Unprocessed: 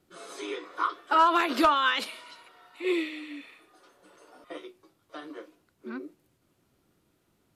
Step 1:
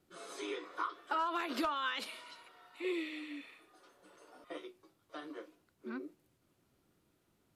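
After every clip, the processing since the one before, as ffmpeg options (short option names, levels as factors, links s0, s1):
-af "acompressor=threshold=0.0316:ratio=3,volume=0.596"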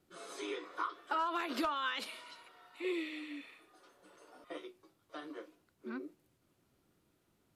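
-af anull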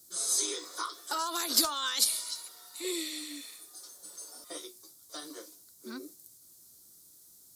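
-af "aexciter=amount=15.5:drive=6.7:freq=4200"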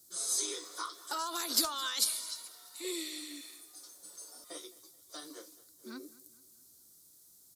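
-af "aecho=1:1:215|430|645|860:0.1|0.047|0.0221|0.0104,volume=0.668"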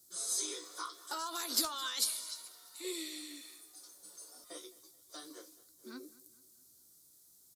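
-filter_complex "[0:a]asplit=2[s0][s1];[s1]adelay=16,volume=0.282[s2];[s0][s2]amix=inputs=2:normalize=0,volume=0.708"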